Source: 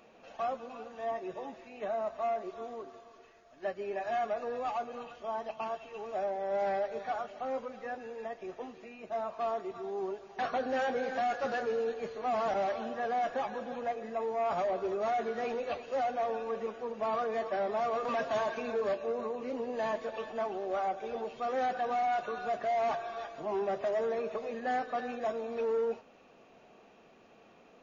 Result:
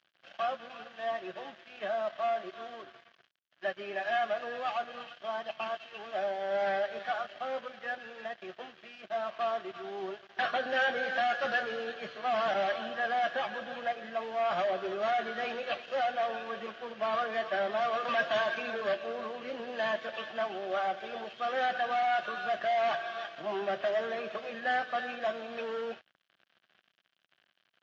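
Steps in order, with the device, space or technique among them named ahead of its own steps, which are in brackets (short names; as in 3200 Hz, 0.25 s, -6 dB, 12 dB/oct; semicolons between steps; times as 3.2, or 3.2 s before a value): blown loudspeaker (crossover distortion -53.5 dBFS; speaker cabinet 170–5300 Hz, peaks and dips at 260 Hz -9 dB, 440 Hz -10 dB, 910 Hz -7 dB, 1600 Hz +7 dB, 3100 Hz +9 dB); gain +4 dB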